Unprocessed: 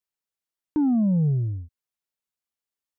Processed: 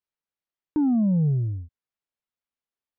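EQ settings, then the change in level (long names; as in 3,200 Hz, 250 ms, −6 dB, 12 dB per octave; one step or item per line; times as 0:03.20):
high-frequency loss of the air 190 metres
0.0 dB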